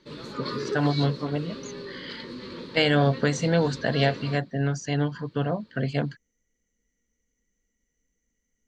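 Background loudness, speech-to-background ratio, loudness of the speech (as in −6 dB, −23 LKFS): −36.5 LKFS, 10.5 dB, −26.0 LKFS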